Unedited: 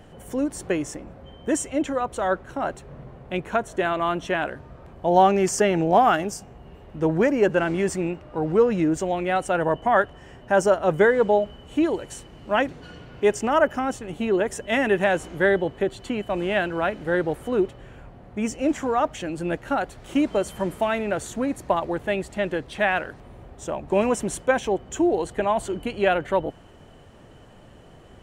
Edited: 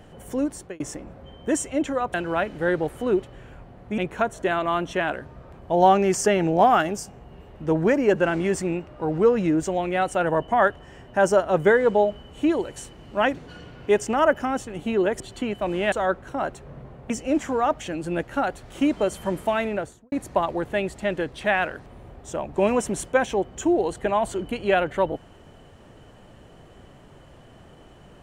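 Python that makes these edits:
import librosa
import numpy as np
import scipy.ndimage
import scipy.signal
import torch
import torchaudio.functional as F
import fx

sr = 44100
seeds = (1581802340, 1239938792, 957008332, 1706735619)

y = fx.studio_fade_out(x, sr, start_s=20.99, length_s=0.47)
y = fx.edit(y, sr, fx.fade_out_span(start_s=0.46, length_s=0.34),
    fx.swap(start_s=2.14, length_s=1.18, other_s=16.6, other_length_s=1.84),
    fx.cut(start_s=14.54, length_s=1.34), tone=tone)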